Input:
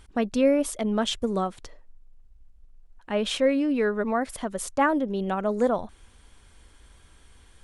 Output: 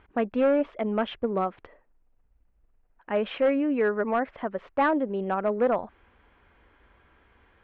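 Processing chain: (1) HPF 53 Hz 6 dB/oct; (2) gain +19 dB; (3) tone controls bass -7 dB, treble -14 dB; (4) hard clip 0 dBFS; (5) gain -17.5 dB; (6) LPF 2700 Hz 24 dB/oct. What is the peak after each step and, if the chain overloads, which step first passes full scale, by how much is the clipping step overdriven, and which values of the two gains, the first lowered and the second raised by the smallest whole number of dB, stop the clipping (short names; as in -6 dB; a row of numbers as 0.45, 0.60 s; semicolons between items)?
-11.0, +8.0, +7.5, 0.0, -17.5, -16.0 dBFS; step 2, 7.5 dB; step 2 +11 dB, step 5 -9.5 dB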